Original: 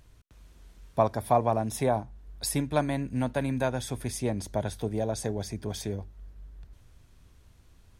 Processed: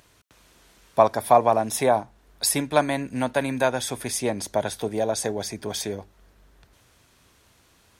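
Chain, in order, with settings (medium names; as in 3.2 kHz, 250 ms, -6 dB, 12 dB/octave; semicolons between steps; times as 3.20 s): high-pass 500 Hz 6 dB/octave; trim +9 dB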